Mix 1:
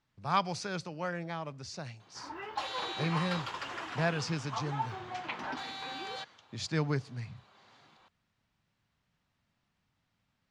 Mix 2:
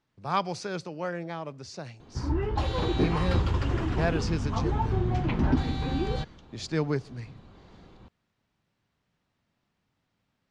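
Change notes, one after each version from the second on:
background: remove high-pass 640 Hz 12 dB/octave; master: add peaking EQ 390 Hz +6.5 dB 1.5 oct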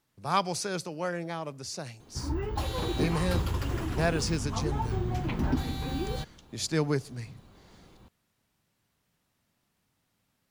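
background -4.0 dB; master: remove distance through air 120 m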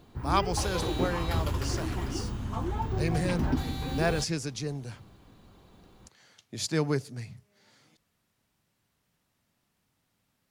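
background: entry -2.00 s

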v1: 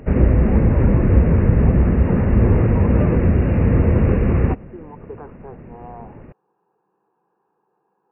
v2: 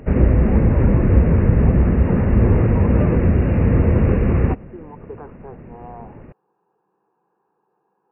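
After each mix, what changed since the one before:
no change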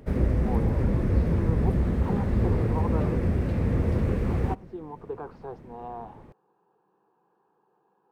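background -9.5 dB; master: remove brick-wall FIR low-pass 2.9 kHz

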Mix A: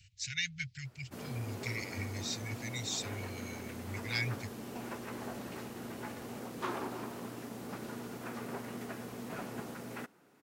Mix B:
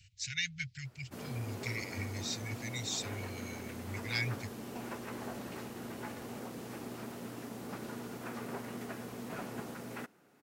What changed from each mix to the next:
second sound: muted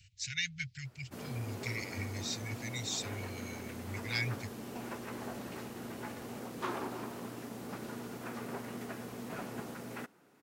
second sound: unmuted

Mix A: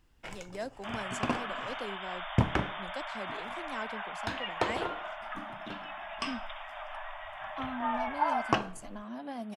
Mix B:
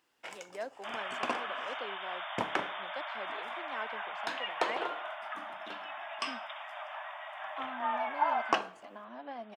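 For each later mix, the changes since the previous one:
speech: add low-pass 2.9 kHz 12 dB/octave; master: add high-pass 430 Hz 12 dB/octave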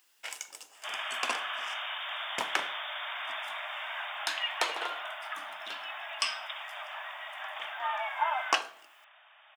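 speech: muted; master: add tilt EQ +4.5 dB/octave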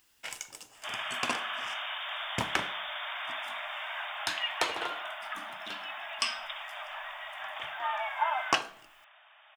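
master: remove high-pass 430 Hz 12 dB/octave

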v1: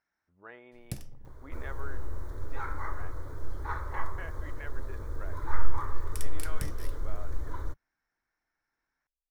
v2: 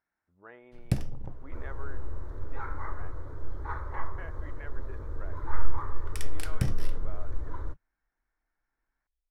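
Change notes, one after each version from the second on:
first sound +11.5 dB; master: add low-pass 1.8 kHz 6 dB/octave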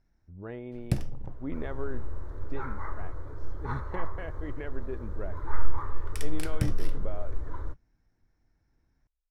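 speech: remove band-pass filter 1.4 kHz, Q 1.3

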